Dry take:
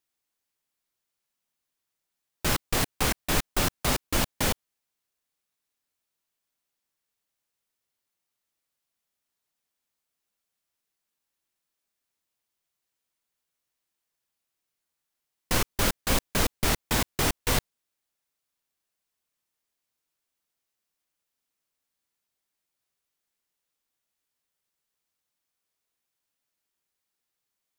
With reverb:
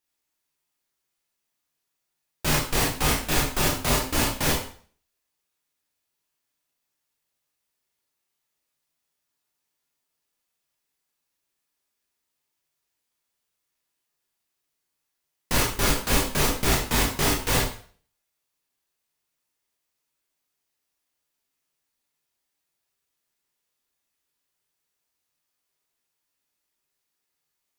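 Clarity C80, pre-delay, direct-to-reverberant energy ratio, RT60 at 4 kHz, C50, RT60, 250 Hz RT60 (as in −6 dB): 10.5 dB, 7 ms, −2.5 dB, 0.45 s, 5.5 dB, 0.45 s, 0.40 s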